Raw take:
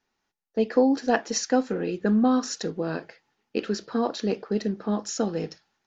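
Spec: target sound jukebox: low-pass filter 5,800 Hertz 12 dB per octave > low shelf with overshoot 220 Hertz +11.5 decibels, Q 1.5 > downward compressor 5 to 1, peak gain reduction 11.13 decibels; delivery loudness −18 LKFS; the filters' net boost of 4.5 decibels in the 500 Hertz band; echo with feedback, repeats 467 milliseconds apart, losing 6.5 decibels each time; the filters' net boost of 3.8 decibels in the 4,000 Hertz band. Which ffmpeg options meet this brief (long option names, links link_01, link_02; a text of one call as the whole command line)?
ffmpeg -i in.wav -af "lowpass=5800,lowshelf=frequency=220:width_type=q:width=1.5:gain=11.5,equalizer=frequency=500:width_type=o:gain=7,equalizer=frequency=4000:width_type=o:gain=7,aecho=1:1:467|934|1401|1868|2335|2802:0.473|0.222|0.105|0.0491|0.0231|0.0109,acompressor=threshold=-22dB:ratio=5,volume=8.5dB" out.wav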